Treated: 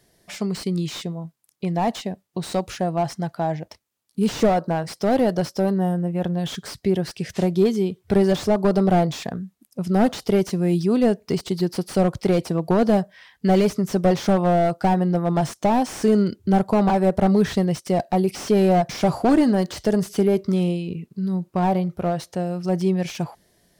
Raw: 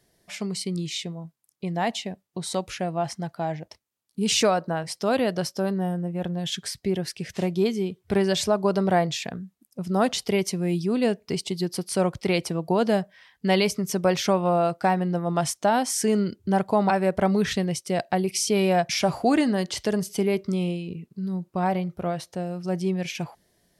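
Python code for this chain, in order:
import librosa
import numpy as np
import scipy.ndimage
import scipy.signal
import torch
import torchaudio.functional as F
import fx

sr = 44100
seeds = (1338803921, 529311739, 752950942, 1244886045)

y = fx.dynamic_eq(x, sr, hz=2400.0, q=1.4, threshold_db=-45.0, ratio=4.0, max_db=-8)
y = fx.slew_limit(y, sr, full_power_hz=62.0)
y = F.gain(torch.from_numpy(y), 5.0).numpy()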